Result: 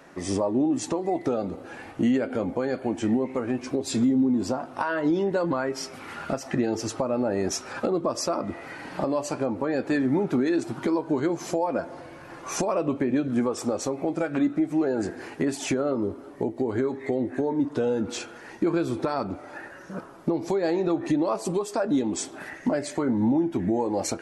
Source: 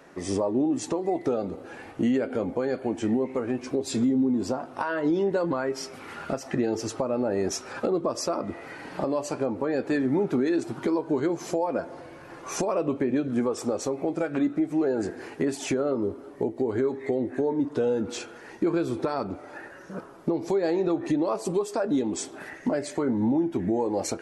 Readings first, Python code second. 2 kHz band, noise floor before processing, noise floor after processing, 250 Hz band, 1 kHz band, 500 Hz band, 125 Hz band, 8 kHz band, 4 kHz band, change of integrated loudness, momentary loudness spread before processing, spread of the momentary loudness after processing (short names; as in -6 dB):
+2.0 dB, -45 dBFS, -44 dBFS, +1.5 dB, +2.0 dB, -0.5 dB, +2.0 dB, +2.0 dB, +2.0 dB, +1.0 dB, 10 LU, 10 LU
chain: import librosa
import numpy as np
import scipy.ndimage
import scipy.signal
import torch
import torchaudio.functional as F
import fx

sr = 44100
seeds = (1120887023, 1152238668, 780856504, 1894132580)

y = fx.peak_eq(x, sr, hz=430.0, db=-4.0, octaves=0.47)
y = F.gain(torch.from_numpy(y), 2.0).numpy()